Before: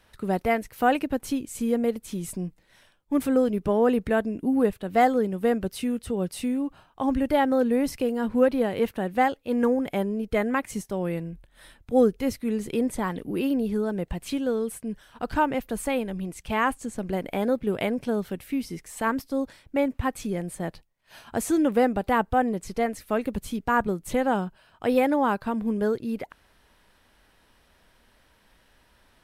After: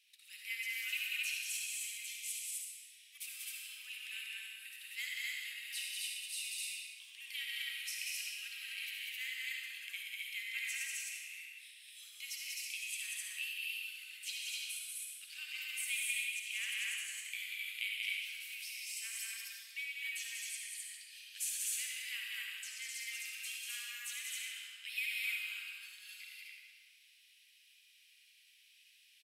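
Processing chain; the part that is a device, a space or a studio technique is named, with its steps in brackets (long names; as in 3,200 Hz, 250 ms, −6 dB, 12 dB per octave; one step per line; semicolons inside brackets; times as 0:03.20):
stadium PA (high-pass filter 240 Hz; parametric band 2,200 Hz +5 dB 0.67 octaves; loudspeakers that aren't time-aligned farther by 65 metres −3 dB, 89 metres −2 dB; convolution reverb RT60 1.9 s, pre-delay 49 ms, DRR −1.5 dB)
elliptic high-pass filter 2,500 Hz, stop band 70 dB
level −4.5 dB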